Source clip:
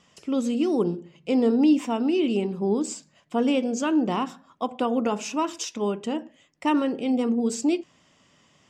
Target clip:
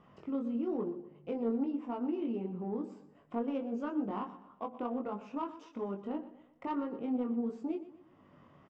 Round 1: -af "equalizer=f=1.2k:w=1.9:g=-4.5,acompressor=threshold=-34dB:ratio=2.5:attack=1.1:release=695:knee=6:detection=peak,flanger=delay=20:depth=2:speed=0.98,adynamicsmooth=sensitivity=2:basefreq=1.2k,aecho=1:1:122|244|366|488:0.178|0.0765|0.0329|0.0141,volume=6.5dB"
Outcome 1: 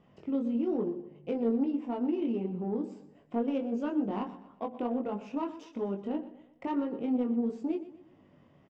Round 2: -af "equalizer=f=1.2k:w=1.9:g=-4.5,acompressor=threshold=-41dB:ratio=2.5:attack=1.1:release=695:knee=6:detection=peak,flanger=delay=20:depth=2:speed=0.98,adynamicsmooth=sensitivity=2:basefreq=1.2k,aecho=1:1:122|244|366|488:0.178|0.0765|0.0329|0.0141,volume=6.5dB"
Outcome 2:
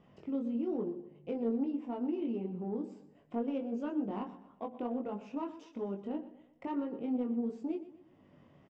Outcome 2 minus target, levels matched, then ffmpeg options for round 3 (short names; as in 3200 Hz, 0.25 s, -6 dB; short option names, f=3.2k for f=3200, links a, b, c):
1000 Hz band -3.0 dB
-af "equalizer=f=1.2k:w=1.9:g=5,acompressor=threshold=-41dB:ratio=2.5:attack=1.1:release=695:knee=6:detection=peak,flanger=delay=20:depth=2:speed=0.98,adynamicsmooth=sensitivity=2:basefreq=1.2k,aecho=1:1:122|244|366|488:0.178|0.0765|0.0329|0.0141,volume=6.5dB"